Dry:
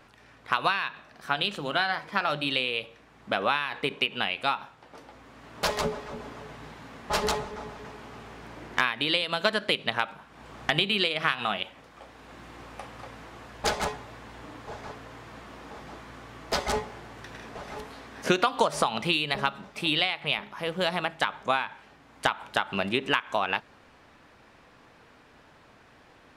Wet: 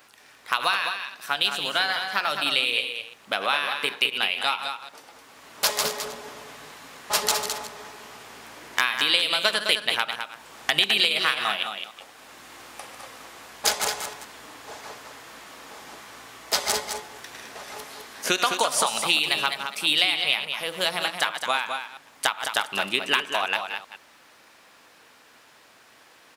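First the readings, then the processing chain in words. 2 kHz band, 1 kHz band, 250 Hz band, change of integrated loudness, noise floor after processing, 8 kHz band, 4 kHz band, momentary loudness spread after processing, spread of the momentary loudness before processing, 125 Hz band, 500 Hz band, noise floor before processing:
+3.5 dB, +1.0 dB, -5.0 dB, +4.0 dB, -54 dBFS, +12.5 dB, +6.5 dB, 22 LU, 19 LU, -9.0 dB, -1.5 dB, -56 dBFS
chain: chunks repeated in reverse 117 ms, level -10 dB; RIAA curve recording; delay 211 ms -7.5 dB

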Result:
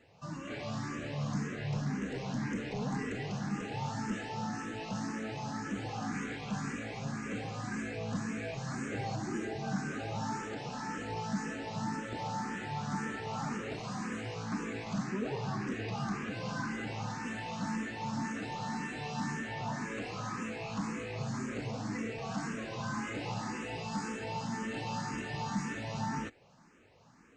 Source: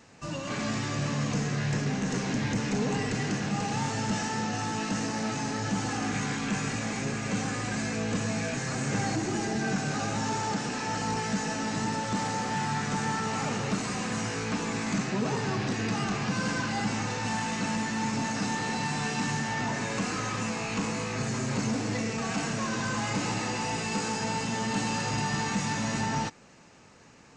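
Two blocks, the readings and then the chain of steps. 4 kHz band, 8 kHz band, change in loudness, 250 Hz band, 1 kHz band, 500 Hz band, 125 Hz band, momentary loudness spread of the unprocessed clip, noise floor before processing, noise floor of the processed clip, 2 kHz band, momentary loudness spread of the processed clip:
-11.0 dB, -13.5 dB, -7.5 dB, -6.5 dB, -7.0 dB, -6.5 dB, -6.5 dB, 2 LU, -36 dBFS, -44 dBFS, -8.0 dB, 3 LU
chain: treble shelf 4.7 kHz -10.5 dB; barber-pole phaser +1.9 Hz; trim -3.5 dB

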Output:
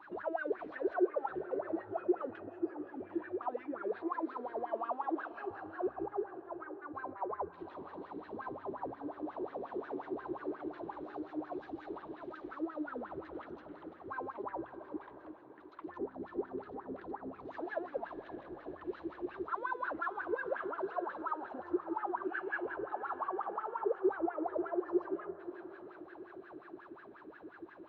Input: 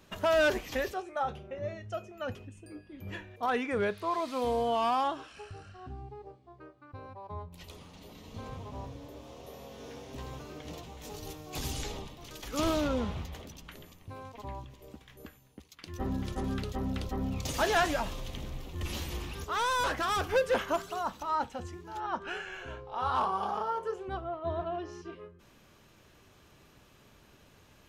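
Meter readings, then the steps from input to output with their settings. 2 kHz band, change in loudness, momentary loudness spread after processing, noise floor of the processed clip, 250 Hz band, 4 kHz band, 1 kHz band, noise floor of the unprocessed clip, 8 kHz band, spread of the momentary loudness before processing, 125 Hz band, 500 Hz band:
-7.0 dB, -6.5 dB, 13 LU, -55 dBFS, -1.5 dB, under -25 dB, -6.5 dB, -60 dBFS, under -35 dB, 20 LU, -20.5 dB, -4.0 dB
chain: graphic EQ with 31 bands 315 Hz +10 dB, 500 Hz -10 dB, 4 kHz +11 dB; in parallel at -1 dB: compressor with a negative ratio -42 dBFS; on the sum: peak limiter -27 dBFS, peak gain reduction 13 dB; saturation -33.5 dBFS, distortion -14 dB; wah-wah 5.6 Hz 350–1700 Hz, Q 12; tape spacing loss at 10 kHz 34 dB; on a send: echo that smears into a reverb 573 ms, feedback 45%, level -15 dB; on the sum: trim +16 dB

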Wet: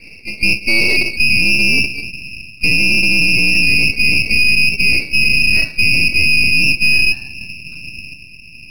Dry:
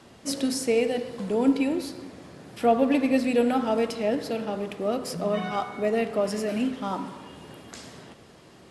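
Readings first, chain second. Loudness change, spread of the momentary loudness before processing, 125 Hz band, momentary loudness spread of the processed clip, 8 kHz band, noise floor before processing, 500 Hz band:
+14.5 dB, 20 LU, +14.5 dB, 18 LU, +10.5 dB, -51 dBFS, -8.5 dB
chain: octave divider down 2 oct, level -3 dB; spectral noise reduction 21 dB; low-pass sweep 460 Hz -> 200 Hz, 0.36–1.56 s; bass shelf 230 Hz +11.5 dB; frequency inversion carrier 2.7 kHz; reverse; compression 6:1, threshold -28 dBFS, peak gain reduction 20.5 dB; reverse; half-wave rectifier; loudness maximiser +30 dB; trim -1 dB

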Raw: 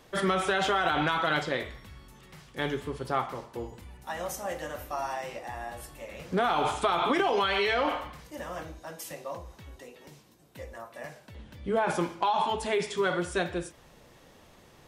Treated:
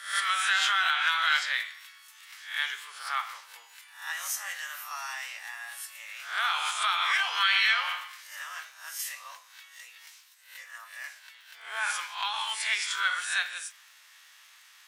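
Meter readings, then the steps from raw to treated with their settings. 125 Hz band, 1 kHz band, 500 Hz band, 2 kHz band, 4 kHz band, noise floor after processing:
under -40 dB, -3.0 dB, -24.5 dB, +6.0 dB, +7.0 dB, -56 dBFS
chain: reverse spectral sustain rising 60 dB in 0.48 s; crackle 48 per s -50 dBFS; high-pass 1.4 kHz 24 dB/octave; trim +5 dB

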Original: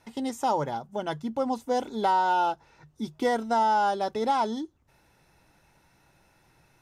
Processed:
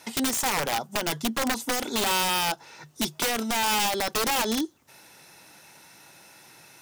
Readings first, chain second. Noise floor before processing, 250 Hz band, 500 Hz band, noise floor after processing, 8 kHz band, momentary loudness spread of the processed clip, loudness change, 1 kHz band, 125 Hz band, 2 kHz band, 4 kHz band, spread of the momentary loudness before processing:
-64 dBFS, +1.5 dB, -2.5 dB, -55 dBFS, +19.0 dB, 6 LU, +1.5 dB, -4.0 dB, +1.5 dB, +7.5 dB, +13.5 dB, 12 LU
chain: high-pass 180 Hz 12 dB/octave; treble shelf 2.5 kHz +11.5 dB; peak limiter -20 dBFS, peak gain reduction 9.5 dB; compression 2.5:1, threshold -31 dBFS, peak gain reduction 5 dB; integer overflow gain 27.5 dB; trim +8 dB

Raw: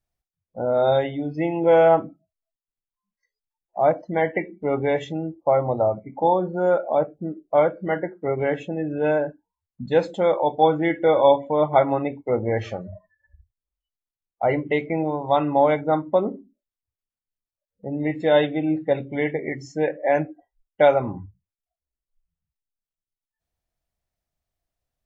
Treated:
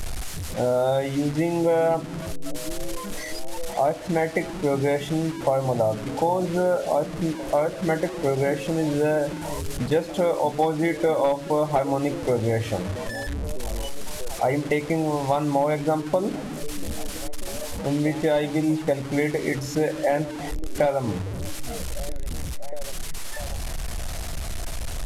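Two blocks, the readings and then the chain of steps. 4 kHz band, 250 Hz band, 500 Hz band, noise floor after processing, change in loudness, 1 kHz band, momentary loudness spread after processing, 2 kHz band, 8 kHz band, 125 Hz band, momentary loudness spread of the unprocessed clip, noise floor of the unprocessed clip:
+3.5 dB, +1.0 dB, -2.5 dB, -33 dBFS, -3.5 dB, -3.5 dB, 11 LU, -1.0 dB, no reading, +3.5 dB, 11 LU, under -85 dBFS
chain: one-bit delta coder 64 kbps, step -32.5 dBFS; bass shelf 87 Hz +10.5 dB; compression 5:1, threshold -23 dBFS, peak gain reduction 11.5 dB; on a send: repeats whose band climbs or falls 640 ms, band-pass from 180 Hz, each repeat 0.7 oct, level -9 dB; on the sum: trim +4 dB

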